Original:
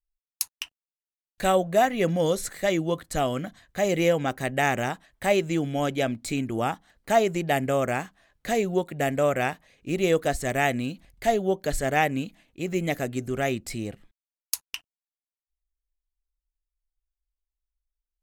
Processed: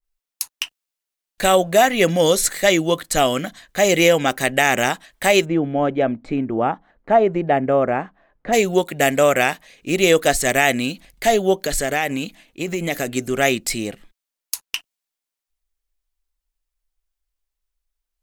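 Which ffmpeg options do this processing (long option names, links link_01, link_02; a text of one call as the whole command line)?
ffmpeg -i in.wav -filter_complex "[0:a]asplit=3[link_01][link_02][link_03];[link_01]afade=type=out:start_time=5.44:duration=0.02[link_04];[link_02]lowpass=1100,afade=type=in:start_time=5.44:duration=0.02,afade=type=out:start_time=8.52:duration=0.02[link_05];[link_03]afade=type=in:start_time=8.52:duration=0.02[link_06];[link_04][link_05][link_06]amix=inputs=3:normalize=0,asettb=1/sr,asplit=3[link_07][link_08][link_09];[link_07]atrim=end=11.664[link_10];[link_08]atrim=start=11.66:end=13.15,asetpts=PTS-STARTPTS,afade=type=in:duration=0.004:curve=qsin,afade=type=out:start_time=1.486:duration=0.004:curve=qsin,acompressor=threshold=-25dB:ratio=12:attack=3.2:release=140:knee=1:detection=peak[link_11];[link_09]atrim=start=13.146[link_12];[link_10][link_11]acrossfade=duration=0.004:curve1=hsin:curve2=qsin[link_13];[link_13][link_12]acrossfade=duration=0.004:curve1=qsin:curve2=hsin,equalizer=frequency=79:width_type=o:width=1.8:gain=-11.5,alimiter=level_in=12.5dB:limit=-1dB:release=50:level=0:latency=1,adynamicequalizer=threshold=0.0398:dfrequency=1900:dqfactor=0.7:tfrequency=1900:tqfactor=0.7:attack=5:release=100:ratio=0.375:range=3:mode=boostabove:tftype=highshelf,volume=-4dB" out.wav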